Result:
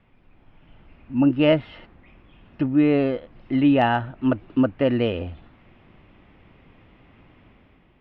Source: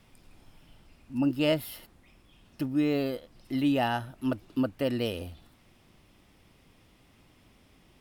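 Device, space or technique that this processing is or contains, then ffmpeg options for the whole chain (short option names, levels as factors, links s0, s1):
action camera in a waterproof case: -af "lowpass=f=2700:w=0.5412,lowpass=f=2700:w=1.3066,dynaudnorm=f=200:g=7:m=2.66" -ar 44100 -c:a aac -b:a 96k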